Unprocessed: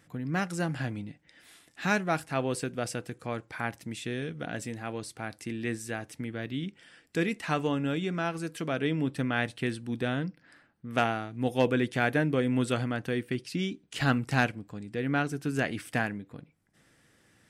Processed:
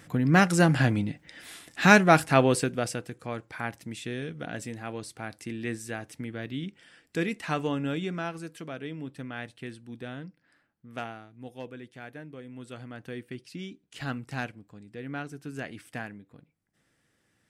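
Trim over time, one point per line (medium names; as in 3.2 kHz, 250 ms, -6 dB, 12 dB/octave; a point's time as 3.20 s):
2.34 s +10 dB
3.09 s -0.5 dB
8.04 s -0.5 dB
8.86 s -9 dB
10.89 s -9 dB
11.78 s -17 dB
12.54 s -17 dB
13.09 s -8 dB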